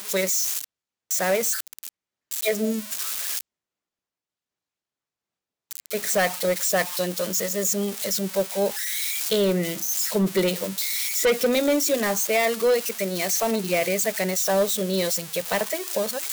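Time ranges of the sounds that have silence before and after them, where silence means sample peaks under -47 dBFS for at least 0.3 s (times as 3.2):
1.11–1.89
2.31–3.41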